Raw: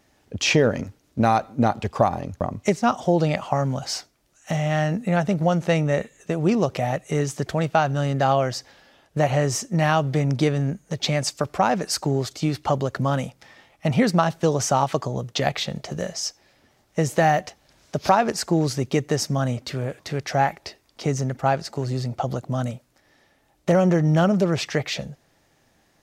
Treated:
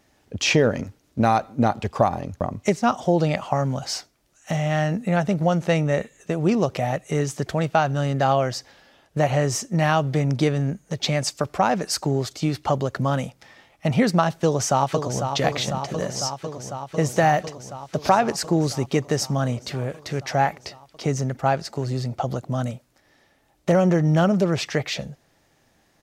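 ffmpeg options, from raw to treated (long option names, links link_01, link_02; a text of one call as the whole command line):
ffmpeg -i in.wav -filter_complex "[0:a]asplit=2[link_01][link_02];[link_02]afade=type=in:start_time=14.43:duration=0.01,afade=type=out:start_time=15.3:duration=0.01,aecho=0:1:500|1000|1500|2000|2500|3000|3500|4000|4500|5000|5500|6000:0.446684|0.357347|0.285877|0.228702|0.182962|0.146369|0.117095|0.0936763|0.0749411|0.0599529|0.0479623|0.0383698[link_03];[link_01][link_03]amix=inputs=2:normalize=0" out.wav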